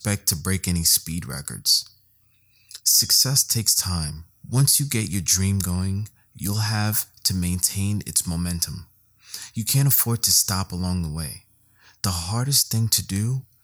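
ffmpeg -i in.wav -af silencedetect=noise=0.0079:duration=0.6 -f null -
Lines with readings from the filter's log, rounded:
silence_start: 1.91
silence_end: 2.69 | silence_duration: 0.78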